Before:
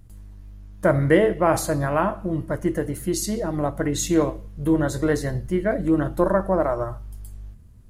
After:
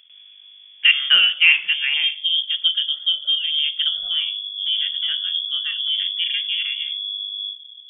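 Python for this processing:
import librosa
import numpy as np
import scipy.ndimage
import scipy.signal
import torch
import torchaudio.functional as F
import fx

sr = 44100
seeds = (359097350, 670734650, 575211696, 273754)

y = fx.peak_eq(x, sr, hz=fx.steps((0.0, 850.0), (1.94, 180.0), (3.88, 61.0)), db=15.0, octaves=2.5)
y = fx.freq_invert(y, sr, carrier_hz=3400)
y = fx.low_shelf(y, sr, hz=240.0, db=-4.5)
y = y * librosa.db_to_amplitude(-7.5)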